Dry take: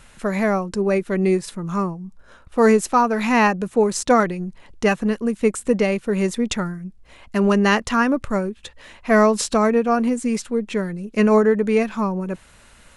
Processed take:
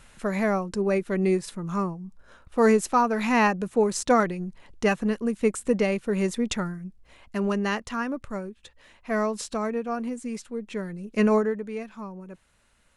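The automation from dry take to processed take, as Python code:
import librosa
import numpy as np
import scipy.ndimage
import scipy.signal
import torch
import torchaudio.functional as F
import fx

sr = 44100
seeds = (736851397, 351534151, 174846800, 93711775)

y = fx.gain(x, sr, db=fx.line((6.82, -4.5), (7.86, -11.0), (10.54, -11.0), (11.27, -4.0), (11.69, -15.5)))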